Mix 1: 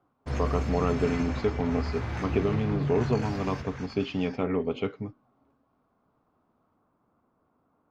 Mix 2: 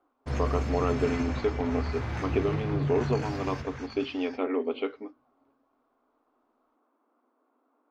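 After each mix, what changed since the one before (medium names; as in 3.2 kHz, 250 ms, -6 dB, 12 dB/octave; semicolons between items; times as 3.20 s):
speech: add brick-wall FIR band-pass 230–4800 Hz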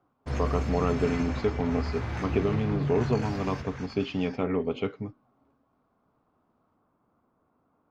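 speech: remove brick-wall FIR band-pass 230–4800 Hz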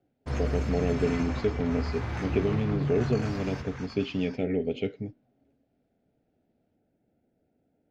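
speech: add Butterworth band-stop 1.1 kHz, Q 1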